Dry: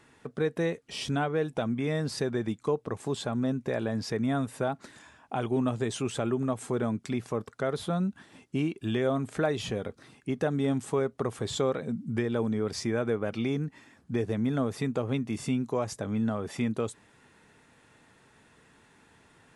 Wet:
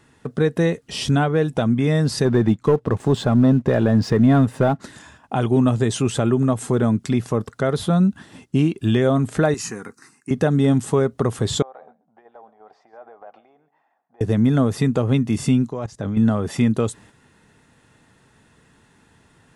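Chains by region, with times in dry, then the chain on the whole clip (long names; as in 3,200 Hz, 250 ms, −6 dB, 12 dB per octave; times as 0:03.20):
0:02.25–0:04.80: low-pass filter 2,400 Hz 6 dB per octave + leveller curve on the samples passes 1
0:09.54–0:10.31: high-pass filter 320 Hz + parametric band 6,800 Hz +8.5 dB 1.5 octaves + phaser with its sweep stopped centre 1,400 Hz, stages 4
0:11.62–0:14.21: downward compressor 10 to 1, threshold −31 dBFS + four-pole ladder band-pass 800 Hz, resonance 75% + single-tap delay 135 ms −15.5 dB
0:15.68–0:16.17: low-pass filter 6,700 Hz + output level in coarse steps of 18 dB
whole clip: notch filter 2,300 Hz, Q 16; noise gate −56 dBFS, range −6 dB; bass and treble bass +6 dB, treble +2 dB; level +8 dB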